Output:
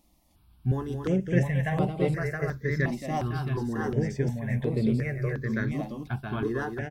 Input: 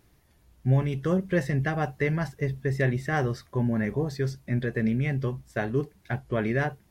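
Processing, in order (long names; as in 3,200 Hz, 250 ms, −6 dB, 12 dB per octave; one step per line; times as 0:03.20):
multi-tap delay 221/670 ms −6.5/−4 dB
step-sequenced phaser 2.8 Hz 420–6,000 Hz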